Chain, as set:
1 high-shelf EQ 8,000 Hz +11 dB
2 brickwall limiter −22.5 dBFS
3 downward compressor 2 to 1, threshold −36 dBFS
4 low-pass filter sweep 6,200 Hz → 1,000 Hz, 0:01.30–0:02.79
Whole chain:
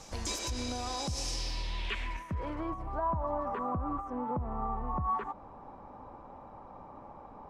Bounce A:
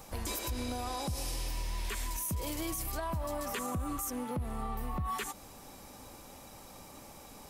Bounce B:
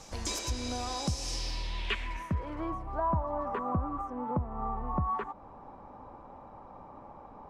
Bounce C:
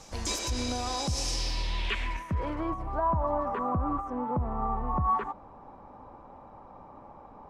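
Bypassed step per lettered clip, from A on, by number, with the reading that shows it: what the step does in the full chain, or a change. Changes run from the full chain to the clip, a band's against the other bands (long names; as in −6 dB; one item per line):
4, 1 kHz band −4.5 dB
2, average gain reduction 1.5 dB
3, average gain reduction 3.0 dB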